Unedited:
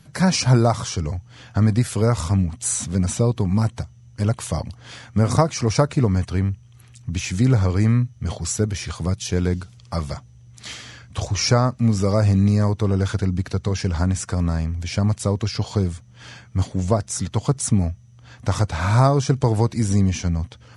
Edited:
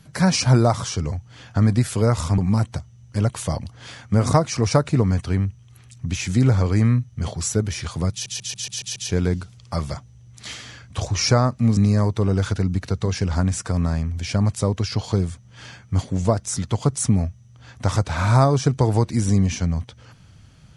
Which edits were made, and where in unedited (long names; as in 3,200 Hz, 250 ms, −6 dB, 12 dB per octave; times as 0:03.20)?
0:02.38–0:03.42: remove
0:09.16: stutter 0.14 s, 7 plays
0:11.97–0:12.40: remove